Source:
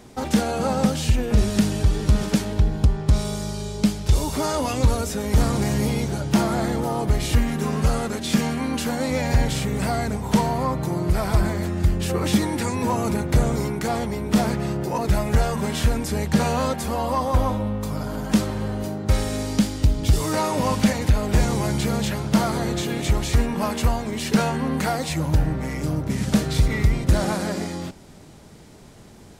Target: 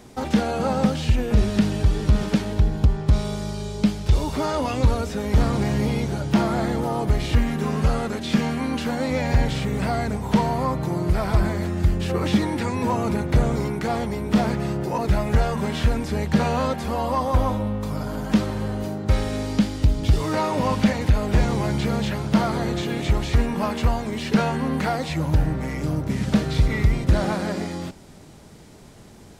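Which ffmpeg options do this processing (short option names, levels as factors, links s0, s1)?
-filter_complex "[0:a]acrossover=split=4700[s0][s1];[s1]acompressor=threshold=0.00501:ratio=4:attack=1:release=60[s2];[s0][s2]amix=inputs=2:normalize=0"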